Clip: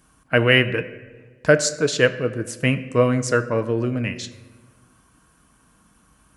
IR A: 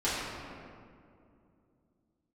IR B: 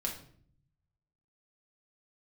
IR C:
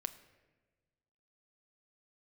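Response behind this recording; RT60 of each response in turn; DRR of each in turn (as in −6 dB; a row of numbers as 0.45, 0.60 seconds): C; 2.5, 0.55, 1.3 seconds; −12.5, −1.5, 9.5 decibels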